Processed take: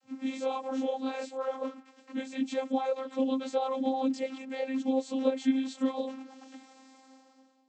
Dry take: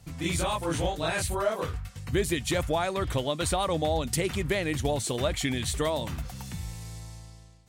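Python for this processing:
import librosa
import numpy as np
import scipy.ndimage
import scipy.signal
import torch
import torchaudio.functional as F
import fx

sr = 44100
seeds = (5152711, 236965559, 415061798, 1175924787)

y = fx.dynamic_eq(x, sr, hz=1600.0, q=1.5, threshold_db=-46.0, ratio=4.0, max_db=-5)
y = fx.chorus_voices(y, sr, voices=2, hz=0.62, base_ms=20, depth_ms=4.0, mix_pct=60)
y = fx.vocoder(y, sr, bands=32, carrier='saw', carrier_hz=264.0)
y = y * librosa.db_to_amplitude(2.0)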